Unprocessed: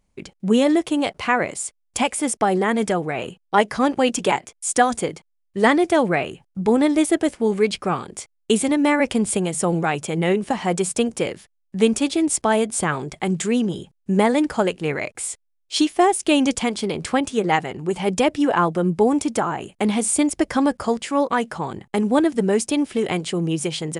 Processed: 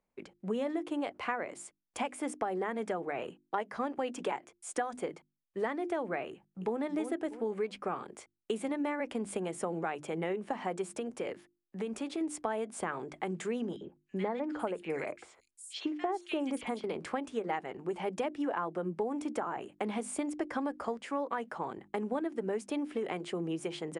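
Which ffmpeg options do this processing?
ffmpeg -i in.wav -filter_complex "[0:a]asplit=2[link_01][link_02];[link_02]afade=type=in:start_time=6.29:duration=0.01,afade=type=out:start_time=6.8:duration=0.01,aecho=0:1:320|640|960:0.398107|0.0995268|0.0248817[link_03];[link_01][link_03]amix=inputs=2:normalize=0,asettb=1/sr,asplit=3[link_04][link_05][link_06];[link_04]atrim=end=10.974[link_07];[link_05]atrim=start=10.97:end=12.21,asetpts=PTS-STARTPTS,afade=type=in:duration=0.004:curve=qsin,afade=type=out:start_time=1.236:duration=0.004:curve=qsin,acompressor=threshold=-21dB:ratio=6:attack=3.2:release=140:knee=1:detection=peak[link_08];[link_06]atrim=start=12.206[link_09];[link_07][link_08]acrossfade=duration=0.004:curve1=hsin:curve2=qsin[link_10];[link_10][link_09]acrossfade=duration=0.004:curve1=qsin:curve2=hsin,asettb=1/sr,asplit=3[link_11][link_12][link_13];[link_11]atrim=end=13.764[link_14];[link_12]atrim=start=13.76:end=16.84,asetpts=PTS-STARTPTS,afade=type=in:duration=0.004:curve=qsin,afade=type=out:start_time=3.076:duration=0.004:curve=qsin,acrossover=split=1900|5900[link_15][link_16][link_17];[link_15]adelay=50[link_18];[link_17]adelay=400[link_19];[link_18][link_16][link_19]amix=inputs=3:normalize=0,atrim=end_sample=135828[link_20];[link_13]atrim=start=16.836[link_21];[link_14][link_20]acrossfade=duration=0.004:curve1=hsin:curve2=qsin[link_22];[link_22][link_21]acrossfade=duration=0.004:curve1=qsin:curve2=hsin,acrossover=split=230 2400:gain=0.224 1 0.251[link_23][link_24][link_25];[link_23][link_24][link_25]amix=inputs=3:normalize=0,bandreject=frequency=50:width_type=h:width=6,bandreject=frequency=100:width_type=h:width=6,bandreject=frequency=150:width_type=h:width=6,bandreject=frequency=200:width_type=h:width=6,bandreject=frequency=250:width_type=h:width=6,bandreject=frequency=300:width_type=h:width=6,bandreject=frequency=350:width_type=h:width=6,acompressor=threshold=-23dB:ratio=5,volume=-7.5dB" out.wav

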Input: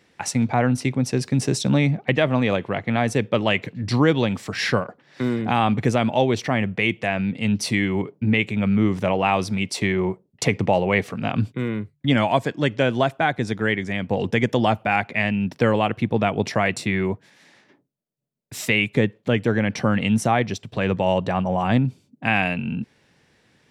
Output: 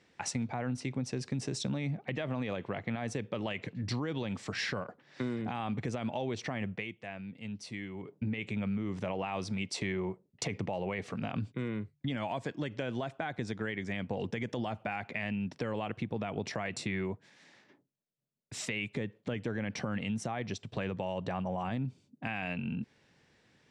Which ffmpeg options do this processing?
ffmpeg -i in.wav -filter_complex "[0:a]asplit=3[link_01][link_02][link_03];[link_01]atrim=end=6.85,asetpts=PTS-STARTPTS,afade=type=out:start_time=6.7:duration=0.15:silence=0.223872[link_04];[link_02]atrim=start=6.85:end=8.01,asetpts=PTS-STARTPTS,volume=-13dB[link_05];[link_03]atrim=start=8.01,asetpts=PTS-STARTPTS,afade=type=in:duration=0.15:silence=0.223872[link_06];[link_04][link_05][link_06]concat=n=3:v=0:a=1,lowpass=frequency=8600:width=0.5412,lowpass=frequency=8600:width=1.3066,alimiter=limit=-13dB:level=0:latency=1:release=48,acompressor=threshold=-26dB:ratio=3,volume=-6.5dB" out.wav

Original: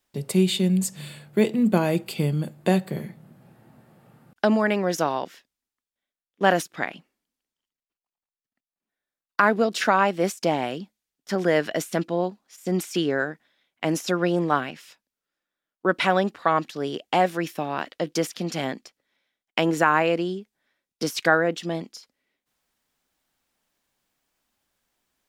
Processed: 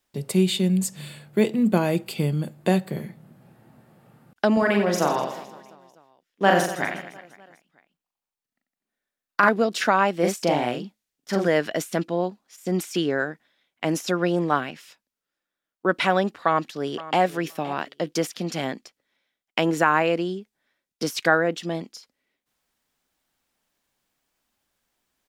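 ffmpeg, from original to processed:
ffmpeg -i in.wav -filter_complex "[0:a]asettb=1/sr,asplit=3[link_01][link_02][link_03];[link_01]atrim=end=4.534[link_04];[link_02]atrim=start=4.53:end=9.49,asetpts=PTS-STARTPTS,afade=type=in:duration=0.004:curve=qsin,afade=type=out:start_time=4.956:duration=0.004:curve=qsin,aecho=1:1:40|92|159.6|247.5|361.7|510.2|703.3|954.3:0.631|0.398|0.251|0.158|0.1|0.0631|0.0398|0.0251,atrim=end_sample=218736[link_05];[link_03]atrim=start=9.486[link_06];[link_04][link_05]acrossfade=duration=0.004:curve1=hsin:curve2=qsin[link_07];[link_07][link_06]acrossfade=duration=0.004:curve1=qsin:curve2=hsin,asettb=1/sr,asplit=3[link_08][link_09][link_10];[link_08]atrim=end=10.194[link_11];[link_09]atrim=start=10.19:end=11.48,asetpts=PTS-STARTPTS,afade=type=in:duration=0.004:curve=qsin,afade=type=out:start_time=1.286:duration=0.004:curve=qsin,asplit=2[link_12][link_13];[link_13]adelay=41,volume=-3dB[link_14];[link_12][link_14]amix=inputs=2:normalize=0,atrim=end_sample=56889[link_15];[link_10]atrim=start=11.476[link_16];[link_11][link_15]acrossfade=duration=0.004:curve1=hsin:curve2=qsin[link_17];[link_17][link_16]acrossfade=duration=0.004:curve1=qsin:curve2=hsin,asplit=2[link_18][link_19];[link_19]afade=type=in:start_time=16.32:duration=0.01,afade=type=out:start_time=17.21:duration=0.01,aecho=0:1:520|1040:0.149624|0.0224435[link_20];[link_18][link_20]amix=inputs=2:normalize=0" out.wav

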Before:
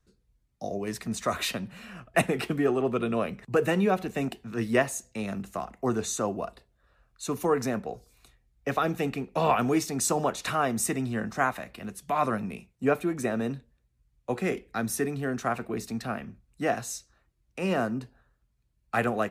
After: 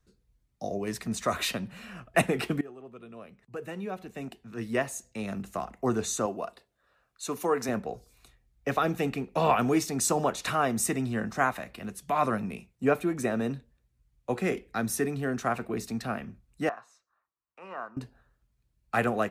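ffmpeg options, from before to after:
ffmpeg -i in.wav -filter_complex "[0:a]asettb=1/sr,asplit=3[link_01][link_02][link_03];[link_01]atrim=end=6.264[link_04];[link_02]atrim=start=6.26:end=7.69,asetpts=PTS-STARTPTS,afade=type=in:duration=0.004:curve=qsin,afade=type=out:start_time=1.426:duration=0.004:curve=qsin,highpass=frequency=340:poles=1[link_05];[link_03]atrim=start=7.686[link_06];[link_04][link_05]acrossfade=duration=0.004:curve1=hsin:curve2=qsin[link_07];[link_07][link_06]acrossfade=duration=0.004:curve1=qsin:curve2=hsin,asettb=1/sr,asplit=3[link_08][link_09][link_10];[link_08]atrim=end=16.694[link_11];[link_09]atrim=start=16.69:end=17.97,asetpts=PTS-STARTPTS,afade=type=in:duration=0.004:curve=qsin,afade=type=out:start_time=1.276:duration=0.004:curve=qsin,bandpass=frequency=1100:width_type=q:width=3.5[link_12];[link_10]atrim=start=17.966[link_13];[link_11][link_12]acrossfade=duration=0.004:curve1=hsin:curve2=qsin[link_14];[link_14][link_13]acrossfade=duration=0.004:curve1=qsin:curve2=hsin,asplit=2[link_15][link_16];[link_15]atrim=end=2.61,asetpts=PTS-STARTPTS,afade=type=out:start_time=2.606:duration=0.004:curve=hsin:silence=0.0944061[link_17];[link_16]atrim=start=2.61,asetpts=PTS-STARTPTS,afade=type=in:duration=2.95:curve=qua:silence=0.0944061[link_18];[link_17][link_18]concat=n=2:v=0:a=1" out.wav

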